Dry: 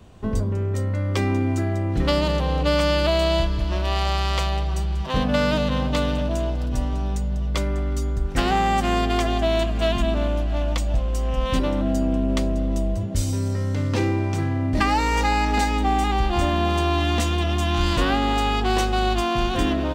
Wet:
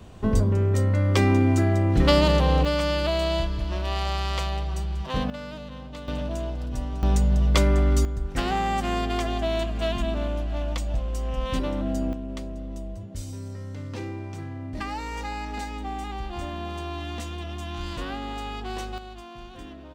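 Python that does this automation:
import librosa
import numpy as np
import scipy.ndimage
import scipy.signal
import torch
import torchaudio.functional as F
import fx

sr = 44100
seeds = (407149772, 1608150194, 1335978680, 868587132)

y = fx.gain(x, sr, db=fx.steps((0.0, 2.5), (2.65, -4.5), (5.3, -16.5), (6.08, -6.0), (7.03, 4.5), (8.05, -5.0), (12.13, -12.0), (18.98, -20.0)))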